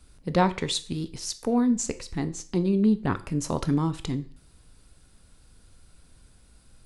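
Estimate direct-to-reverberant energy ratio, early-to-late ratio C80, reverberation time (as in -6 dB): 11.0 dB, 21.0 dB, 0.45 s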